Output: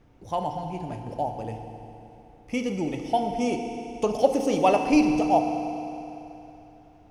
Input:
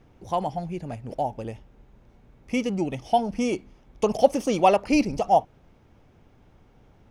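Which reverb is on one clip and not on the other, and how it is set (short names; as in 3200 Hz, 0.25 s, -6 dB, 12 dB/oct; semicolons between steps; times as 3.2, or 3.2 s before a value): FDN reverb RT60 3.1 s, high-frequency decay 0.95×, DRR 4.5 dB; gain -2.5 dB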